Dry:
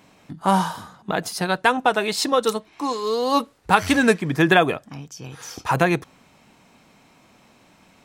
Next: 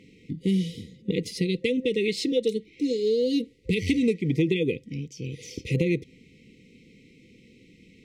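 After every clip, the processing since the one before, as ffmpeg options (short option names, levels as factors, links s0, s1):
-af "afftfilt=real='re*(1-between(b*sr/4096,520,1900))':imag='im*(1-between(b*sr/4096,520,1900))':win_size=4096:overlap=0.75,acompressor=threshold=0.0708:ratio=6,aemphasis=mode=reproduction:type=75fm,volume=1.33"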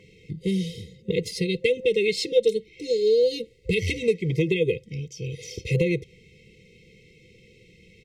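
-af "aecho=1:1:1.9:0.9"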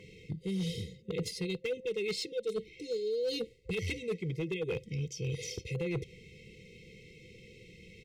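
-af "areverse,acompressor=threshold=0.0282:ratio=10,areverse,volume=25.1,asoftclip=hard,volume=0.0398"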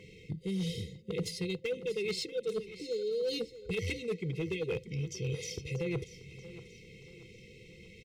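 -af "aecho=1:1:635|1270|1905|2540:0.178|0.0747|0.0314|0.0132"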